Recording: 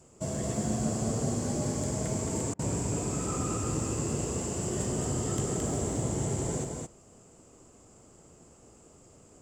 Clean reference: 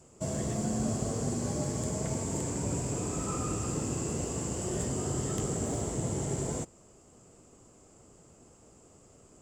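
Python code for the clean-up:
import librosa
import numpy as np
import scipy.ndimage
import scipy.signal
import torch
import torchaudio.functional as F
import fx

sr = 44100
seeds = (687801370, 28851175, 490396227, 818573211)

y = fx.fix_interpolate(x, sr, at_s=(2.54,), length_ms=50.0)
y = fx.fix_echo_inverse(y, sr, delay_ms=219, level_db=-3.5)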